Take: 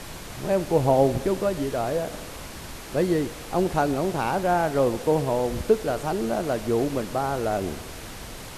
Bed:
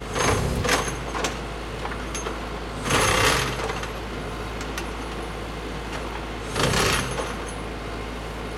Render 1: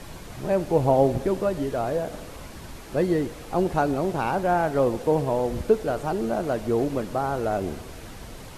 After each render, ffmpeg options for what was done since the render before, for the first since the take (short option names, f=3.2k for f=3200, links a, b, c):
-af "afftdn=nr=6:nf=-39"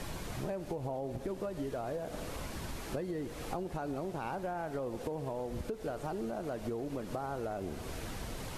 -af "alimiter=limit=-18.5dB:level=0:latency=1:release=195,acompressor=threshold=-35dB:ratio=6"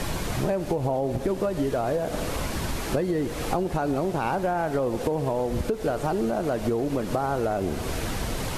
-af "volume=12dB"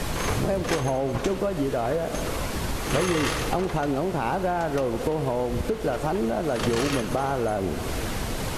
-filter_complex "[1:a]volume=-8dB[a];[0:a][a]amix=inputs=2:normalize=0"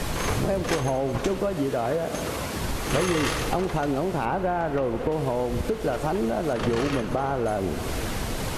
-filter_complex "[0:a]asettb=1/sr,asplit=3[a][b][c];[a]atrim=end=1.534[d];[b]atrim=start=1.53:end=2.61,asetpts=PTS-STARTPTS,afade=t=in:d=0.004:c=qsin,afade=t=out:st=1.076:d=0.004:c=qsin,highpass=75[e];[c]atrim=start=2.606[f];[d][e]acrossfade=d=0.004:c1=hsin:c2=qsin[g];[g][f]acrossfade=d=0.004:c1=qsin:c2=hsin,asettb=1/sr,asplit=3[h][i][j];[h]atrim=end=4.254[k];[i]atrim=start=4.25:end=5.12,asetpts=PTS-STARTPTS,afade=t=in:d=0.004:c=qsin,afade=t=out:st=0.866:d=0.004:c=qsin,acrossover=split=3000[l][m];[m]acompressor=threshold=-56dB:ratio=4:attack=1:release=60[n];[l][n]amix=inputs=2:normalize=0[o];[j]atrim=start=5.116[p];[k][o]acrossfade=d=0.004:c1=hsin:c2=qsin[q];[q][p]acrossfade=d=0.004:c1=qsin:c2=hsin,asettb=1/sr,asplit=3[r][s][t];[r]atrim=end=6.534[u];[s]atrim=start=6.53:end=7.46,asetpts=PTS-STARTPTS,afade=t=in:d=0.004:c=qsin,afade=t=out:st=0.926:d=0.004:c=qsin,highshelf=f=4k:g=-10[v];[t]atrim=start=7.456[w];[u][v]acrossfade=d=0.004:c1=hsin:c2=qsin[x];[x][w]acrossfade=d=0.004:c1=qsin:c2=hsin"